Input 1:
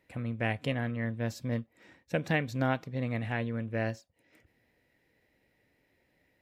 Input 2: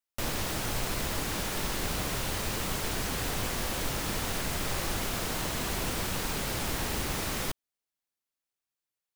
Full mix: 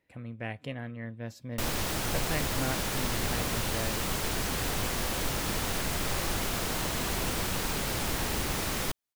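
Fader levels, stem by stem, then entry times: -6.0 dB, +1.0 dB; 0.00 s, 1.40 s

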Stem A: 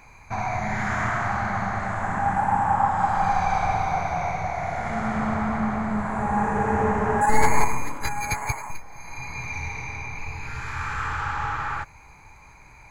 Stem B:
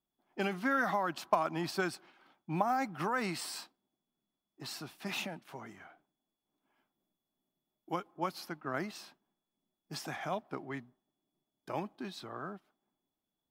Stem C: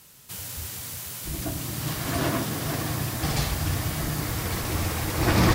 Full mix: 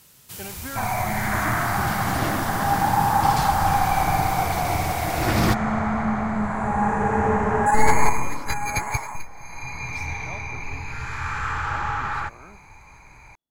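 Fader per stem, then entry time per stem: +1.5 dB, -5.0 dB, -1.0 dB; 0.45 s, 0.00 s, 0.00 s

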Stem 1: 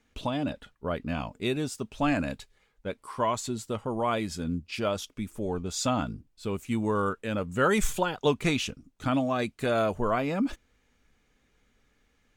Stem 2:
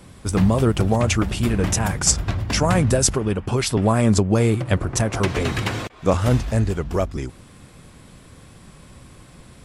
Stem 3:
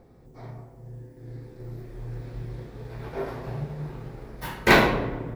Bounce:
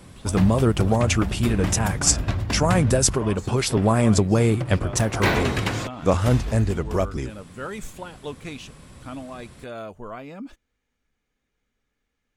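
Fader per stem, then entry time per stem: -9.5 dB, -1.0 dB, -6.0 dB; 0.00 s, 0.00 s, 0.55 s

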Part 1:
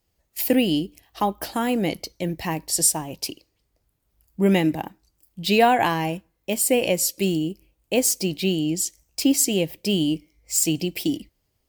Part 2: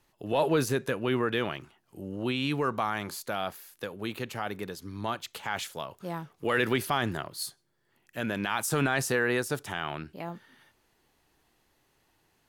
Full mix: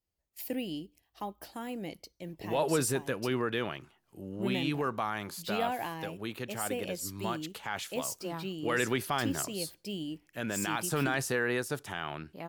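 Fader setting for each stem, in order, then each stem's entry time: -16.0 dB, -3.5 dB; 0.00 s, 2.20 s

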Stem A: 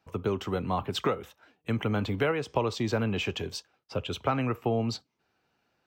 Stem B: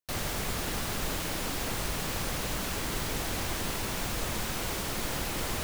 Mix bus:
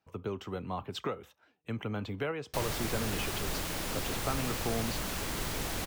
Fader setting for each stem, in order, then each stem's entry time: -7.5 dB, -2.5 dB; 0.00 s, 2.45 s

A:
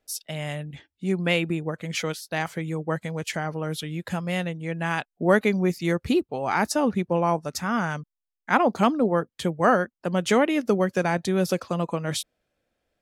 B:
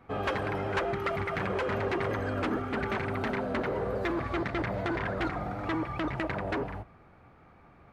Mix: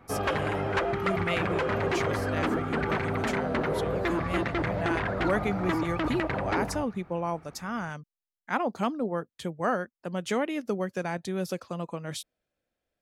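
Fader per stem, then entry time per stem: -8.0 dB, +2.5 dB; 0.00 s, 0.00 s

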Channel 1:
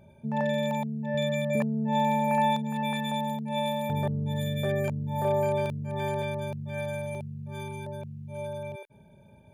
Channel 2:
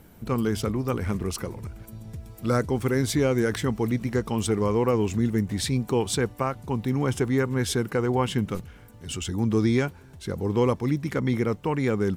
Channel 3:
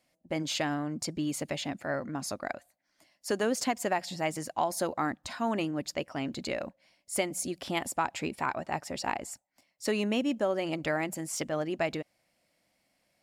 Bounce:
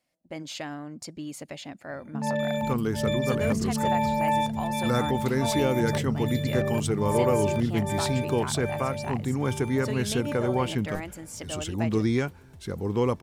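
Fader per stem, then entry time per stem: 0.0 dB, -2.5 dB, -5.0 dB; 1.90 s, 2.40 s, 0.00 s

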